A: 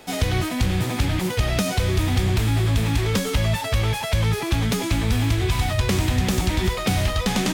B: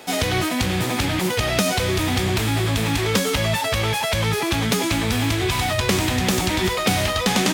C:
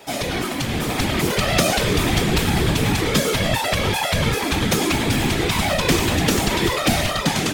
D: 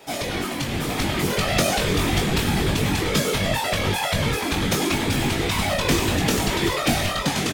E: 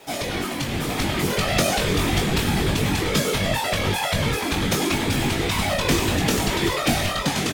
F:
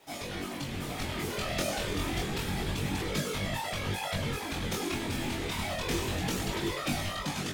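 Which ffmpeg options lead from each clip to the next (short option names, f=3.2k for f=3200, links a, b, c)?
-af "highpass=f=240:p=1,volume=5dB"
-af "dynaudnorm=f=630:g=3:m=11.5dB,afftfilt=real='hypot(re,im)*cos(2*PI*random(0))':imag='hypot(re,im)*sin(2*PI*random(1))':win_size=512:overlap=0.75,volume=3dB"
-filter_complex "[0:a]asplit=2[a][b];[b]adelay=21,volume=-5.5dB[c];[a][c]amix=inputs=2:normalize=0,volume=-3.5dB"
-af "acrusher=bits=8:mix=0:aa=0.000001"
-af "flanger=delay=20:depth=4.4:speed=0.28,volume=-8dB"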